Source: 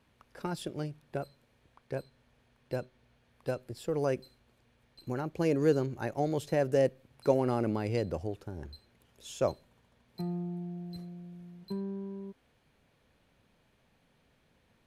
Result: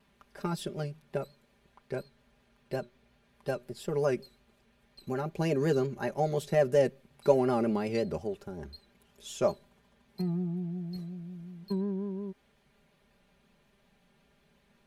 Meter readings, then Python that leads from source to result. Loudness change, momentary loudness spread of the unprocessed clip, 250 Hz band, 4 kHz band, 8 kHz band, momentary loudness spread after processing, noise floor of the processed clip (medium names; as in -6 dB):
+1.5 dB, 18 LU, +1.5 dB, +2.0 dB, +2.0 dB, 17 LU, -68 dBFS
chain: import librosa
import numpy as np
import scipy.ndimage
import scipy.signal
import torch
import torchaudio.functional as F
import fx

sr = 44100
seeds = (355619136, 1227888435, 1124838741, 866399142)

y = fx.vibrato(x, sr, rate_hz=5.5, depth_cents=74.0)
y = y + 0.76 * np.pad(y, (int(5.0 * sr / 1000.0), 0))[:len(y)]